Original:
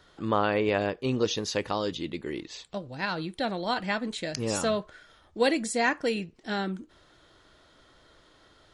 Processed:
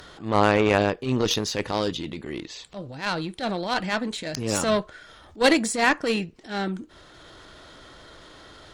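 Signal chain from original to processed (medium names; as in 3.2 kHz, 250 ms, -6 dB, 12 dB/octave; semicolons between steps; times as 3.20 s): upward compressor, threshold -37 dBFS; Chebyshev shaper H 2 -17 dB, 7 -22 dB, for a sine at -10.5 dBFS; transient shaper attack -10 dB, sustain +4 dB; trim +8.5 dB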